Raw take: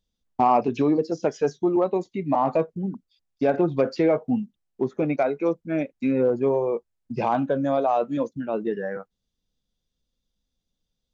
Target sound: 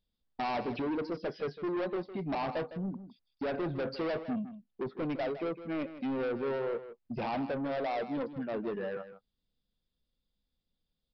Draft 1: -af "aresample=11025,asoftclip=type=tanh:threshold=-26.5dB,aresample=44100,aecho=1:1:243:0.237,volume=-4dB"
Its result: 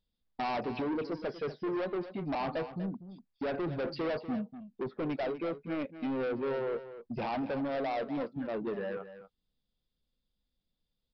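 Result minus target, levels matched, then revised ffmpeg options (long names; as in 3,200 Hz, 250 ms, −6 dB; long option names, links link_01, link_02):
echo 86 ms late
-af "aresample=11025,asoftclip=type=tanh:threshold=-26.5dB,aresample=44100,aecho=1:1:157:0.237,volume=-4dB"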